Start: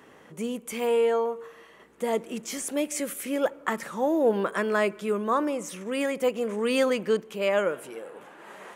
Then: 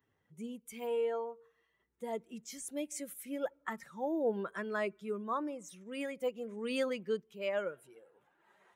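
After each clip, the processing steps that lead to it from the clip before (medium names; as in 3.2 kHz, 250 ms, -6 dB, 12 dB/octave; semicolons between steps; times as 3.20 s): expander on every frequency bin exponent 1.5; trim -8.5 dB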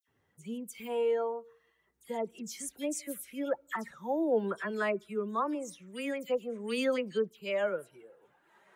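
phase dispersion lows, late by 77 ms, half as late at 2.6 kHz; trim +4 dB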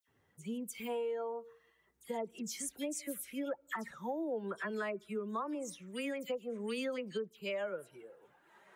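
compression 6:1, threshold -36 dBFS, peak gain reduction 12 dB; trim +1 dB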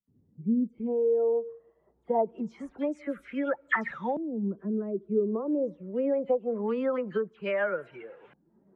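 LFO low-pass saw up 0.24 Hz 200–2700 Hz; trim +8 dB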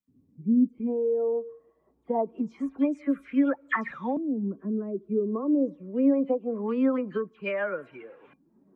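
small resonant body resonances 270/1100/2400 Hz, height 13 dB, ringing for 85 ms; trim -1.5 dB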